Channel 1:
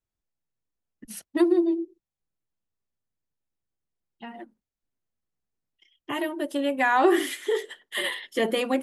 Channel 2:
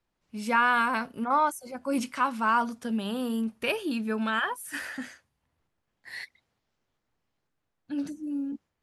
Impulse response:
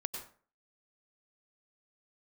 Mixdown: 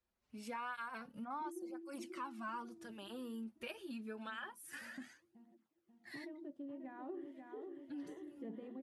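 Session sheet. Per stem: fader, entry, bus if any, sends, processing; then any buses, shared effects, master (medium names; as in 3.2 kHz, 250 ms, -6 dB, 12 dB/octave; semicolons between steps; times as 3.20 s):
-16.0 dB, 0.05 s, no send, echo send -7.5 dB, gate with hold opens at -43 dBFS; level rider gain up to 12 dB; band-pass filter 180 Hz, Q 1.8
-5.5 dB, 0.00 s, no send, no echo send, cancelling through-zero flanger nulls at 0.27 Hz, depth 7.2 ms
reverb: none
echo: feedback delay 538 ms, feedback 52%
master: compression 2:1, threshold -51 dBFS, peak gain reduction 13.5 dB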